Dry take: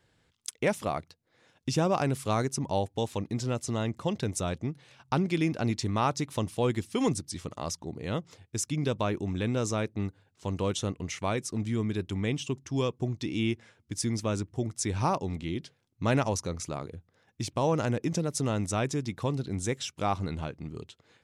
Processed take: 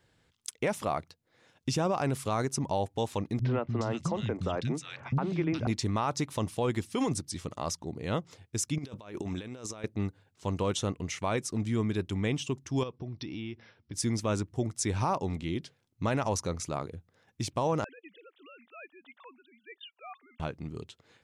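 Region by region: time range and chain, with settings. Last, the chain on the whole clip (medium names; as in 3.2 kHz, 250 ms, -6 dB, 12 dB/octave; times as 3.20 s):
3.39–5.67 s: distance through air 89 m + three bands offset in time lows, mids, highs 60/420 ms, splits 210/2000 Hz + three bands compressed up and down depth 100%
8.78–9.84 s: bass shelf 230 Hz -9 dB + compressor with a negative ratio -38 dBFS, ratio -0.5
12.83–13.94 s: brick-wall FIR low-pass 5.9 kHz + compression, threshold -35 dBFS
17.84–20.40 s: formants replaced by sine waves + high-pass 230 Hz + differentiator
whole clip: dynamic bell 990 Hz, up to +4 dB, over -39 dBFS, Q 0.79; peak limiter -19.5 dBFS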